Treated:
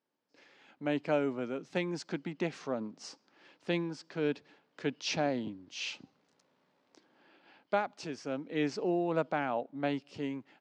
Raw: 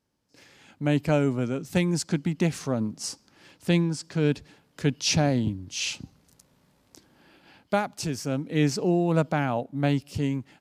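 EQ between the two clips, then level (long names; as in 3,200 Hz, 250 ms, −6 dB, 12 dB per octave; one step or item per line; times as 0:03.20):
high-pass filter 320 Hz 12 dB per octave
high-frequency loss of the air 130 metres
high-shelf EQ 9,400 Hz −9 dB
−4.0 dB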